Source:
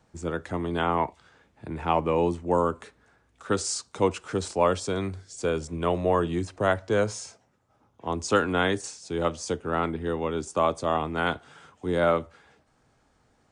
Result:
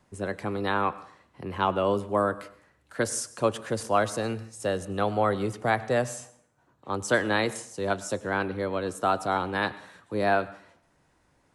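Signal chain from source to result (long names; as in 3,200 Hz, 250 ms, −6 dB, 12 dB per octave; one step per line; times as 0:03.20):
speed change +17%
dense smooth reverb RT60 0.6 s, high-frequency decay 0.8×, pre-delay 85 ms, DRR 17 dB
level −1 dB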